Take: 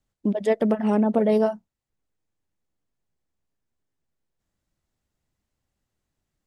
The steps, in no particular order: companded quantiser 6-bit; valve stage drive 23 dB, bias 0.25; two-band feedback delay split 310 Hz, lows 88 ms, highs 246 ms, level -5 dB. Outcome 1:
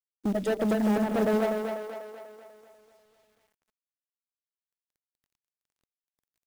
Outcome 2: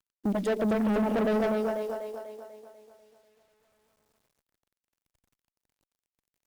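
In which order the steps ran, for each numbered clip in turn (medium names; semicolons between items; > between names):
valve stage > two-band feedback delay > companded quantiser; two-band feedback delay > companded quantiser > valve stage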